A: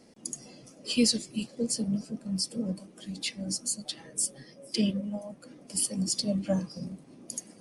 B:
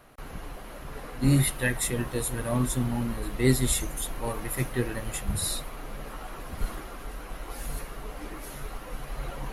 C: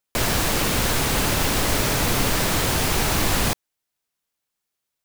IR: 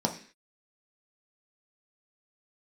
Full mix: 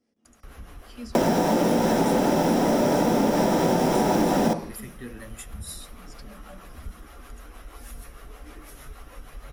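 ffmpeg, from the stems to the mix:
-filter_complex "[0:a]lowpass=f=3.4k:p=1,volume=-14dB,asplit=2[a][b];[b]volume=-19dB[c];[1:a]equalizer=f=68:w=1.7:g=9.5,adelay=250,volume=-2.5dB,asplit=2[d][e];[e]volume=-21.5dB[f];[2:a]equalizer=f=470:w=0.37:g=13.5,adelay=1000,volume=-9dB,asplit=2[g][h];[h]volume=-5dB[i];[a][d]amix=inputs=2:normalize=0,acrossover=split=450[j][k];[j]aeval=exprs='val(0)*(1-0.5/2+0.5/2*cos(2*PI*6.4*n/s))':c=same[l];[k]aeval=exprs='val(0)*(1-0.5/2-0.5/2*cos(2*PI*6.4*n/s))':c=same[m];[l][m]amix=inputs=2:normalize=0,acompressor=threshold=-37dB:ratio=2,volume=0dB[n];[3:a]atrim=start_sample=2205[o];[c][f][i]amix=inputs=3:normalize=0[p];[p][o]afir=irnorm=-1:irlink=0[q];[g][n][q]amix=inputs=3:normalize=0,acompressor=threshold=-18dB:ratio=6"

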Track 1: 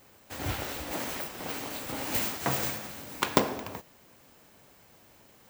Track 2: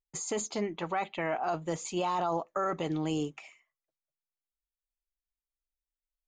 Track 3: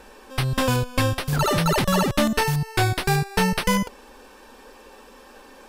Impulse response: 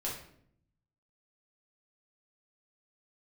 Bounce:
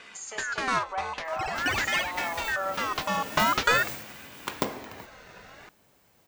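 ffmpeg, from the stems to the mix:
-filter_complex "[0:a]adelay=1250,volume=-5.5dB[a];[1:a]highpass=f=580:w=0.5412,highpass=f=580:w=1.3066,aecho=1:1:5.1:0.34,volume=-6.5dB,asplit=3[b][c][d];[c]volume=-4dB[e];[2:a]lowpass=f=6.7k:w=0.5412,lowpass=f=6.7k:w=1.3066,aeval=exprs='val(0)*sin(2*PI*1500*n/s+1500*0.35/0.47*sin(2*PI*0.47*n/s))':c=same,volume=1dB[f];[d]apad=whole_len=250902[g];[f][g]sidechaincompress=threshold=-50dB:ratio=5:attack=23:release=219[h];[3:a]atrim=start_sample=2205[i];[e][i]afir=irnorm=-1:irlink=0[j];[a][b][h][j]amix=inputs=4:normalize=0"

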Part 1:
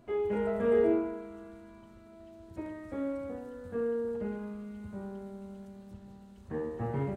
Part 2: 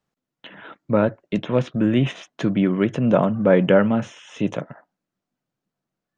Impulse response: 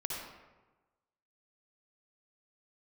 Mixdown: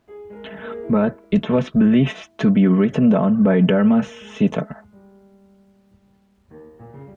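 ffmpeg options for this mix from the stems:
-filter_complex "[0:a]acrusher=bits=9:mix=0:aa=0.000001,volume=-7dB[a];[1:a]equalizer=f=65:t=o:w=1.7:g=10.5,aecho=1:1:4.6:0.77,volume=2.5dB[b];[a][b]amix=inputs=2:normalize=0,highshelf=f=4.5k:g=-7.5,alimiter=limit=-7.5dB:level=0:latency=1:release=68"

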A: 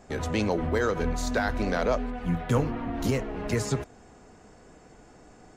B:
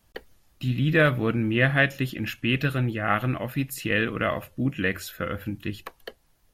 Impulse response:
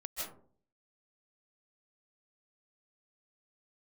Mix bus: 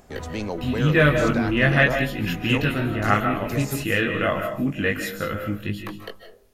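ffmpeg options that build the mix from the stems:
-filter_complex "[0:a]acompressor=mode=upward:threshold=-47dB:ratio=2.5,volume=-3dB[a];[1:a]flanger=delay=19:depth=2:speed=0.38,volume=2.5dB,asplit=2[b][c];[c]volume=-3.5dB[d];[2:a]atrim=start_sample=2205[e];[d][e]afir=irnorm=-1:irlink=0[f];[a][b][f]amix=inputs=3:normalize=0"

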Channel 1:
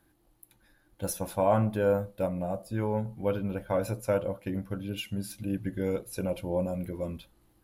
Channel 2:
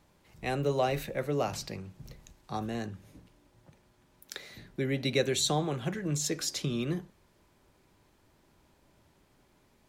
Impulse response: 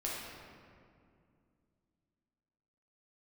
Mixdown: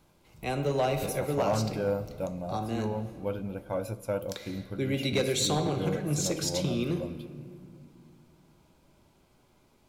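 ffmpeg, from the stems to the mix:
-filter_complex "[0:a]volume=-4.5dB,asplit=2[a][b];[b]volume=-20.5dB[c];[1:a]volume=-1.5dB,asplit=2[d][e];[e]volume=-7dB[f];[2:a]atrim=start_sample=2205[g];[c][f]amix=inputs=2:normalize=0[h];[h][g]afir=irnorm=-1:irlink=0[i];[a][d][i]amix=inputs=3:normalize=0,bandreject=f=1.8k:w=5.4,asoftclip=type=hard:threshold=-20dB"

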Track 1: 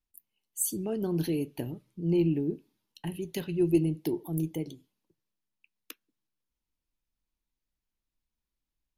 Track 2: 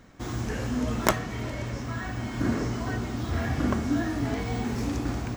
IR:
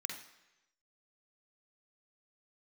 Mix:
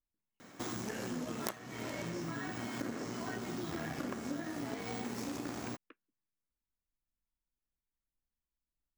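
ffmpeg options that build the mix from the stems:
-filter_complex "[0:a]aphaser=in_gain=1:out_gain=1:delay=1.1:decay=0.24:speed=1.7:type=sinusoidal,lowpass=f=2k:w=0.5412,lowpass=f=2k:w=1.3066,alimiter=limit=-21dB:level=0:latency=1,volume=-8dB[a];[1:a]aeval=exprs='0.841*(cos(1*acos(clip(val(0)/0.841,-1,1)))-cos(1*PI/2))+0.188*(cos(6*acos(clip(val(0)/0.841,-1,1)))-cos(6*PI/2))':c=same,highpass=200,adelay=400,volume=0.5dB[b];[a][b]amix=inputs=2:normalize=0,highshelf=f=8.1k:g=10,acompressor=threshold=-37dB:ratio=6"

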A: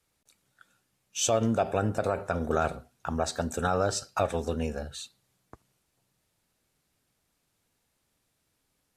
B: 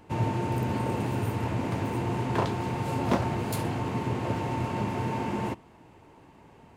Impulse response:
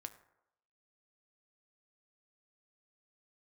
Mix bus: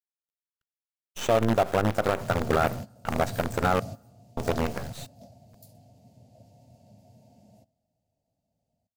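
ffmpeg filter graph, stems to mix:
-filter_complex "[0:a]acrusher=bits=5:dc=4:mix=0:aa=0.000001,acrossover=split=2700[a][b];[b]acompressor=threshold=-40dB:ratio=4:attack=1:release=60[c];[a][c]amix=inputs=2:normalize=0,agate=range=-33dB:threshold=-42dB:ratio=3:detection=peak,volume=2dB,asplit=3[d][e][f];[d]atrim=end=3.8,asetpts=PTS-STARTPTS,afade=t=out:st=3.796:d=0.004:c=hsin[g];[e]atrim=start=3.8:end=4.37,asetpts=PTS-STARTPTS,volume=0[h];[f]atrim=start=4.37,asetpts=PTS-STARTPTS,afade=t=in:d=0.004:c=hsin[i];[g][h][i]concat=n=3:v=0:a=1,asplit=3[j][k][l];[k]volume=-10.5dB[m];[1:a]firequalizer=gain_entry='entry(240,0);entry(350,-18);entry(650,8);entry(1000,-26);entry(4700,6);entry(9300,4);entry(15000,13)':delay=0.05:min_phase=1,adelay=2100,volume=-7dB,asplit=2[n][o];[o]volume=-21dB[p];[l]apad=whole_len=395525[q];[n][q]sidechaingate=range=-21dB:threshold=-42dB:ratio=16:detection=peak[r];[2:a]atrim=start_sample=2205[s];[m][p]amix=inputs=2:normalize=0[t];[t][s]afir=irnorm=-1:irlink=0[u];[j][r][u]amix=inputs=3:normalize=0"

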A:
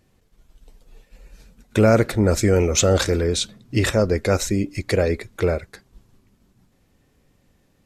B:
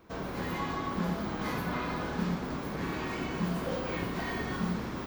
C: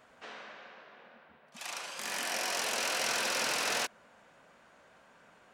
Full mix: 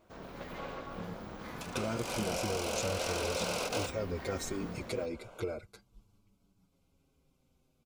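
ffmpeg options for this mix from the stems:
-filter_complex "[0:a]asplit=2[a][b];[b]adelay=6.5,afreqshift=-0.34[c];[a][c]amix=inputs=2:normalize=1,volume=-8dB,asplit=2[d][e];[1:a]tremolo=f=280:d=0.857,volume=-7dB[f];[2:a]equalizer=f=510:t=o:w=0.88:g=11.5,volume=2.5dB[g];[e]apad=whole_len=244155[h];[g][h]sidechaingate=range=-15dB:threshold=-59dB:ratio=16:detection=peak[i];[d][i]amix=inputs=2:normalize=0,asuperstop=centerf=1800:order=4:qfactor=3.5,acompressor=threshold=-34dB:ratio=3,volume=0dB[j];[f][j]amix=inputs=2:normalize=0"

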